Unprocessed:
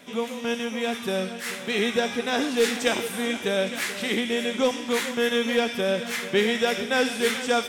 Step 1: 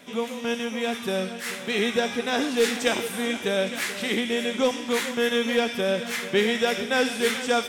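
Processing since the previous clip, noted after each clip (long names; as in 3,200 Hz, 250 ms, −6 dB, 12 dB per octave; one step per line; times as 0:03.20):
no processing that can be heard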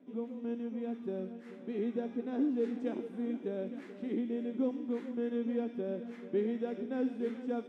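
resonant band-pass 290 Hz, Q 3.1
level −1.5 dB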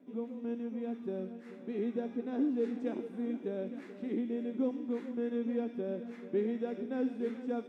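notch filter 3,100 Hz, Q 19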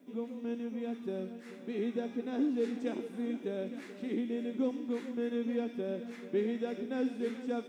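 high-shelf EQ 2,500 Hz +12 dB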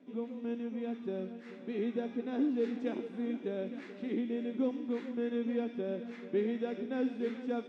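low-pass filter 4,200 Hz 12 dB per octave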